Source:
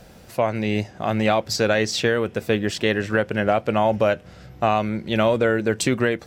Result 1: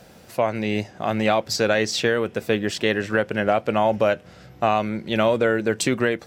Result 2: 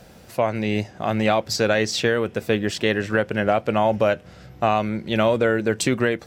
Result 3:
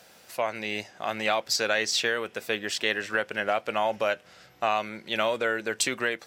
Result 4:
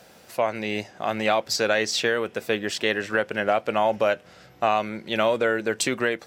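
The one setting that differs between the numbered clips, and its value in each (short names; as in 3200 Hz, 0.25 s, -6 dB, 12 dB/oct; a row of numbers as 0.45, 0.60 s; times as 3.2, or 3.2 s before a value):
HPF, cutoff: 130, 47, 1300, 510 Hz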